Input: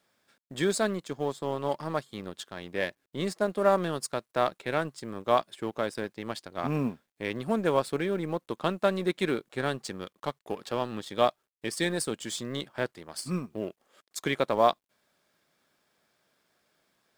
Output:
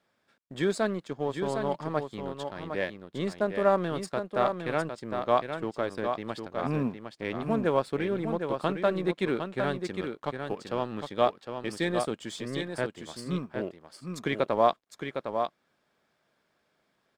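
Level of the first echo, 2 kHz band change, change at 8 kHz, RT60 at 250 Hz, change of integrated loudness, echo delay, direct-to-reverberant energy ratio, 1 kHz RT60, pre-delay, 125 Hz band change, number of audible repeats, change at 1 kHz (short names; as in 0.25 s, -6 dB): -6.5 dB, -0.5 dB, -8.0 dB, none, 0.0 dB, 0.758 s, none, none, none, +1.0 dB, 1, +0.5 dB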